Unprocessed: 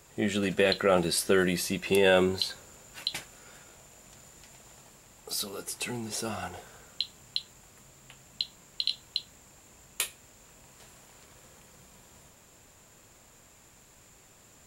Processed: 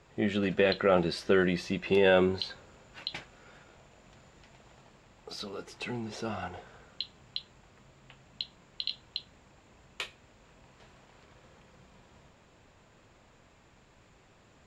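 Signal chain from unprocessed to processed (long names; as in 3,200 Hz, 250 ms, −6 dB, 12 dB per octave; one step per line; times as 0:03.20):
high-frequency loss of the air 180 metres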